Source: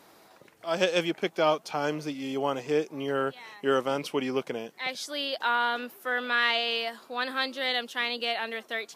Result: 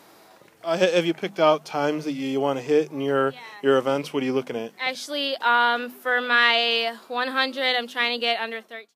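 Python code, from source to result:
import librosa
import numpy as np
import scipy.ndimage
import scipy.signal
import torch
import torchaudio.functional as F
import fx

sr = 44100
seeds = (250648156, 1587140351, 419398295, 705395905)

y = fx.fade_out_tail(x, sr, length_s=0.63)
y = fx.hum_notches(y, sr, base_hz=50, count=5)
y = fx.hpss(y, sr, part='percussive', gain_db=-7)
y = y * librosa.db_to_amplitude(7.0)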